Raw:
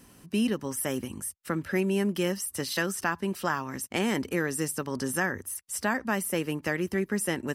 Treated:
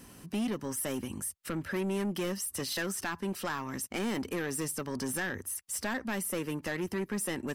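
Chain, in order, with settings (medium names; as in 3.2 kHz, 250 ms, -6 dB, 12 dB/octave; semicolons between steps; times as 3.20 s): in parallel at -1 dB: compression, threshold -38 dBFS, peak gain reduction 15.5 dB; on the sum: saturation -24.5 dBFS, distortion -10 dB; trim -3 dB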